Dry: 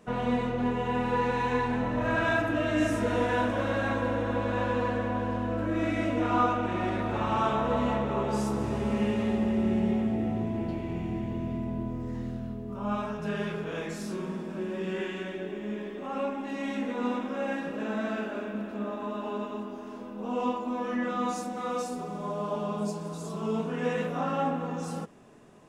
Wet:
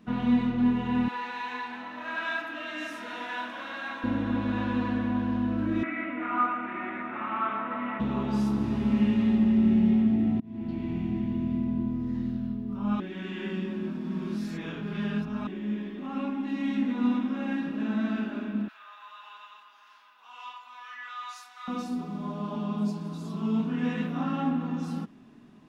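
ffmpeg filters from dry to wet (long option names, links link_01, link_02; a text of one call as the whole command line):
ffmpeg -i in.wav -filter_complex "[0:a]asettb=1/sr,asplit=3[link_01][link_02][link_03];[link_01]atrim=end=1.084[link_04];[link_02]atrim=start=1.08:end=4.04,asetpts=PTS-STARTPTS,afade=type=in:duration=0.004:curve=qsin,afade=type=out:start_time=2.956:duration=0.004:curve=qsin,highpass=760[link_05];[link_03]atrim=start=4.036[link_06];[link_04][link_05]acrossfade=duration=0.004:curve1=hsin:curve2=qsin[link_07];[link_07][link_06]acrossfade=duration=0.004:curve1=qsin:curve2=hsin,asettb=1/sr,asplit=3[link_08][link_09][link_10];[link_08]atrim=end=5.834[link_11];[link_09]atrim=start=5.83:end=8,asetpts=PTS-STARTPTS,afade=type=in:duration=0.004:curve=qsin,afade=type=out:start_time=2.166:duration=0.004:curve=qsin,highpass=450,equalizer=frequency=480:width_type=q:width=4:gain=-4,equalizer=frequency=840:width_type=q:width=4:gain=-4,equalizer=frequency=1300:width_type=q:width=4:gain=6,equalizer=frequency=2100:width_type=q:width=4:gain=8,lowpass=frequency=2400:width=0.5412,lowpass=frequency=2400:width=1.3066[link_12];[link_10]atrim=start=7.996[link_13];[link_11][link_12]acrossfade=duration=0.004:curve1=hsin:curve2=qsin[link_14];[link_14][link_13]acrossfade=duration=0.004:curve1=qsin:curve2=hsin,asettb=1/sr,asplit=3[link_15][link_16][link_17];[link_15]atrim=end=18.684[link_18];[link_16]atrim=start=18.68:end=21.68,asetpts=PTS-STARTPTS,afade=type=in:duration=0.004:curve=qsin,afade=type=out:start_time=2.996:duration=0.004:curve=qsin,highpass=frequency=1100:width=0.5412,highpass=frequency=1100:width=1.3066[link_19];[link_17]atrim=start=21.676[link_20];[link_18][link_19]acrossfade=duration=0.004:curve1=hsin:curve2=qsin[link_21];[link_21][link_20]acrossfade=duration=0.004:curve1=qsin:curve2=hsin,asplit=4[link_22][link_23][link_24][link_25];[link_22]atrim=end=10.4,asetpts=PTS-STARTPTS,afade=type=out:start_time=10.396:duration=0.004:curve=hsin[link_26];[link_23]atrim=start=10.4:end=13.002,asetpts=PTS-STARTPTS,afade=type=in:duration=0.45[link_27];[link_24]atrim=start=12.998:end=15.472,asetpts=PTS-STARTPTS,areverse[link_28];[link_25]atrim=start=15.468[link_29];[link_26][link_27]concat=n=2:v=0:a=1[link_30];[link_30][link_28]acrossfade=duration=0.004:curve1=hsin:curve2=hsin[link_31];[link_31][link_29]acrossfade=duration=0.004:curve1=hsin:curve2=hsin,equalizer=frequency=250:width_type=o:width=1:gain=11,equalizer=frequency=500:width_type=o:width=1:gain=-11,equalizer=frequency=4000:width_type=o:width=1:gain=5,equalizer=frequency=8000:width_type=o:width=1:gain=-11,volume=-2dB" out.wav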